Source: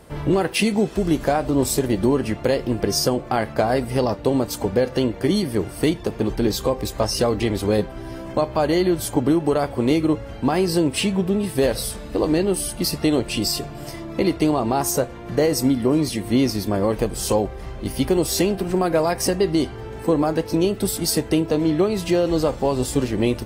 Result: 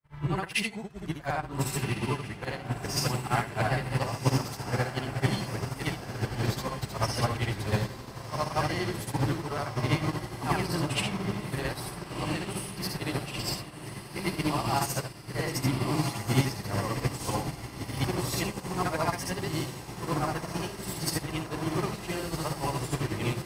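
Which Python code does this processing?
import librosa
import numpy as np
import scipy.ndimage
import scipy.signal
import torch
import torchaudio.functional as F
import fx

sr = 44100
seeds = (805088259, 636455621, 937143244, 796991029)

p1 = fx.frame_reverse(x, sr, frame_ms=178.0)
p2 = fx.graphic_eq(p1, sr, hz=(125, 250, 500, 1000, 2000), db=(8, -7, -8, 6, 6))
p3 = p2 + fx.echo_diffused(p2, sr, ms=1432, feedback_pct=72, wet_db=-5, dry=0)
y = fx.upward_expand(p3, sr, threshold_db=-44.0, expansion=2.5)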